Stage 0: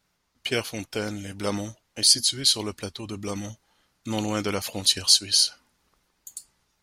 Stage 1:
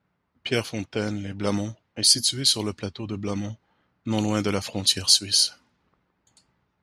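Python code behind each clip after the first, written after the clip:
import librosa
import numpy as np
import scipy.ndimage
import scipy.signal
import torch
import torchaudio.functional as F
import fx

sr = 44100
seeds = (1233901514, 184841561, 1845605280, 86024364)

y = scipy.signal.sosfilt(scipy.signal.butter(2, 100.0, 'highpass', fs=sr, output='sos'), x)
y = fx.env_lowpass(y, sr, base_hz=1900.0, full_db=-21.0)
y = fx.low_shelf(y, sr, hz=220.0, db=9.0)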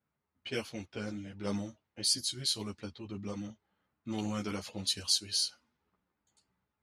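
y = fx.ensemble(x, sr)
y = y * librosa.db_to_amplitude(-8.5)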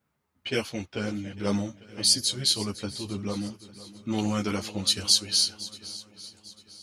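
y = fx.echo_swing(x, sr, ms=848, ratio=1.5, feedback_pct=34, wet_db=-17)
y = y * librosa.db_to_amplitude(8.0)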